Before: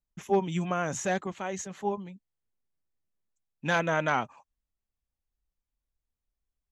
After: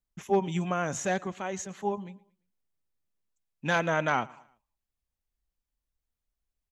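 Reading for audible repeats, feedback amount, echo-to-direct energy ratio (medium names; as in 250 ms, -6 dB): 2, 40%, -23.0 dB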